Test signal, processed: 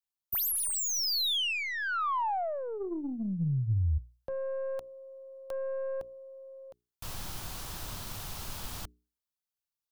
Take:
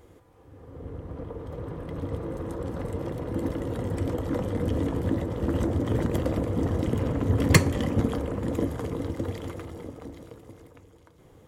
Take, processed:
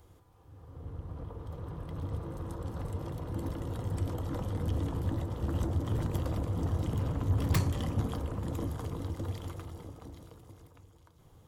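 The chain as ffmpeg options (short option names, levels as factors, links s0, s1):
-filter_complex "[0:a]bandreject=f=60:t=h:w=6,bandreject=f=120:t=h:w=6,bandreject=f=180:t=h:w=6,bandreject=f=240:t=h:w=6,bandreject=f=300:t=h:w=6,bandreject=f=360:t=h:w=6,bandreject=f=420:t=h:w=6,aeval=exprs='(tanh(7.94*val(0)+0.15)-tanh(0.15))/7.94':c=same,acrossover=split=340|2500[s0][s1][s2];[s2]aeval=exprs='0.0531*(abs(mod(val(0)/0.0531+3,4)-2)-1)':c=same[s3];[s0][s1][s3]amix=inputs=3:normalize=0,equalizer=f=250:t=o:w=1:g=-7,equalizer=f=500:t=o:w=1:g=-9,equalizer=f=2000:t=o:w=1:g=-9,equalizer=f=8000:t=o:w=1:g=-3"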